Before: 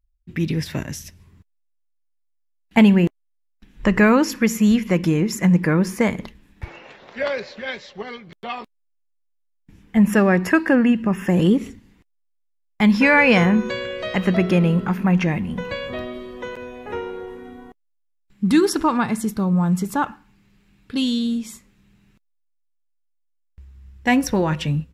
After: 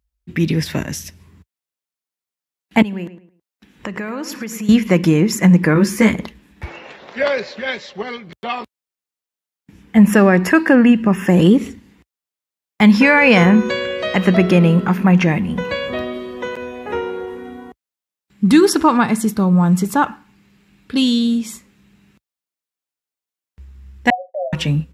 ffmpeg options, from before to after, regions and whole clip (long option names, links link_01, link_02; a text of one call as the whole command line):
ffmpeg -i in.wav -filter_complex "[0:a]asettb=1/sr,asplit=3[link_01][link_02][link_03];[link_01]atrim=end=2.824[link_04];[link_02]atrim=start=2.82:end=4.69,asetpts=PTS-STARTPTS,afade=type=in:duration=0.004:curve=qsin,afade=type=out:start_time=1.866:duration=0.004:curve=qsin,highpass=frequency=160:poles=1,acompressor=threshold=-30dB:ratio=6:attack=3.2:release=140:knee=1:detection=peak,asplit=2[link_05][link_06];[link_06]adelay=108,lowpass=frequency=2900:poles=1,volume=-12dB,asplit=2[link_07][link_08];[link_08]adelay=108,lowpass=frequency=2900:poles=1,volume=0.3,asplit=2[link_09][link_10];[link_10]adelay=108,lowpass=frequency=2900:poles=1,volume=0.3[link_11];[link_05][link_07][link_09][link_11]amix=inputs=4:normalize=0,atrim=end_sample=82467[link_12];[link_03]atrim=start=4.686[link_13];[link_04][link_12]acrossfade=duration=0.004:curve1=hsin:curve2=qsin[link_14];[link_14][link_13]acrossfade=duration=0.004:curve1=qsin:curve2=hsin,asettb=1/sr,asplit=3[link_15][link_16][link_17];[link_15]atrim=end=5.744[link_18];[link_16]atrim=start=5.74:end=6.14,asetpts=PTS-STARTPTS,afade=type=in:duration=0.004:curve=qsin,afade=type=out:start_time=0.396:duration=0.004:curve=qsin,equalizer=frequency=730:width_type=o:width=0.88:gain=-9,asplit=2[link_19][link_20];[link_20]adelay=14,volume=-2dB[link_21];[link_19][link_21]amix=inputs=2:normalize=0,atrim=end_sample=17640[link_22];[link_17]atrim=start=6.136[link_23];[link_18][link_22]acrossfade=duration=0.004:curve1=hsin:curve2=qsin[link_24];[link_24][link_23]acrossfade=duration=0.004:curve1=qsin:curve2=hsin,asettb=1/sr,asplit=3[link_25][link_26][link_27];[link_25]atrim=end=24.104[link_28];[link_26]atrim=start=24.1:end=24.53,asetpts=PTS-STARTPTS,afade=type=in:duration=0.004:curve=qsin,afade=type=out:start_time=0.426:duration=0.004:curve=qsin,asuperpass=centerf=630:order=20:qfactor=3,agate=range=-33dB:threshold=-40dB:ratio=3:release=100:detection=peak[link_29];[link_27]atrim=start=24.526[link_30];[link_28][link_29]acrossfade=duration=0.004:curve1=hsin:curve2=qsin[link_31];[link_31][link_30]acrossfade=duration=0.004:curve1=qsin:curve2=hsin,highpass=frequency=56:width=0.5412,highpass=frequency=56:width=1.3066,equalizer=frequency=110:width=3.3:gain=-8,alimiter=level_in=7dB:limit=-1dB:release=50:level=0:latency=1,volume=-1dB" out.wav